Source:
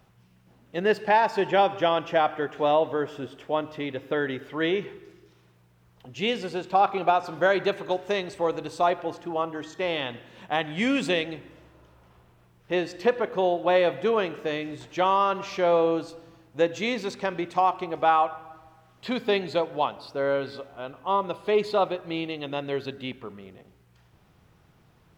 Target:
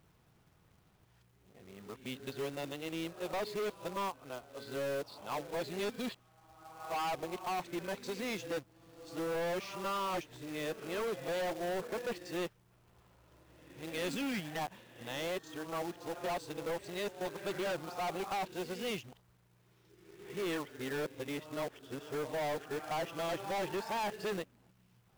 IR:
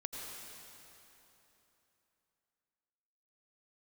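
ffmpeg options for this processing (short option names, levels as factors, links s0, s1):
-af "areverse,volume=12.6,asoftclip=hard,volume=0.0794,acrusher=bits=2:mode=log:mix=0:aa=0.000001,volume=0.376"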